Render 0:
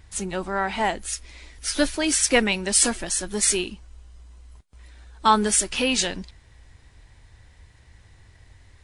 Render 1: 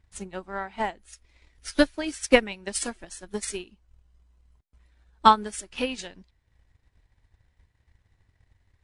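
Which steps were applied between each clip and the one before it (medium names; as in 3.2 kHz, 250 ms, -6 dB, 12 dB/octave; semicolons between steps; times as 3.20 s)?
treble shelf 4.2 kHz -7.5 dB; transient shaper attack +8 dB, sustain -4 dB; upward expansion 1.5:1, over -33 dBFS; trim -2.5 dB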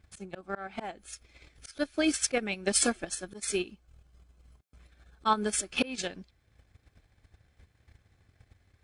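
in parallel at 0 dB: level held to a coarse grid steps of 20 dB; on the sum: slow attack 278 ms; comb of notches 950 Hz; trim +3.5 dB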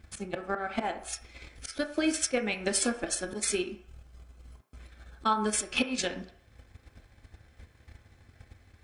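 compression 4:1, threshold -34 dBFS, peak gain reduction 12 dB; on a send at -5.5 dB: reverberation RT60 0.60 s, pre-delay 3 ms; on the sum: trim +7 dB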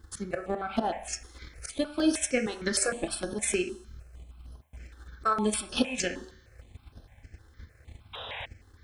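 feedback comb 75 Hz, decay 1.1 s, harmonics all, mix 40%; painted sound noise, 8.13–8.46 s, 410–3900 Hz -44 dBFS; stepped phaser 6.5 Hz 640–7500 Hz; trim +8 dB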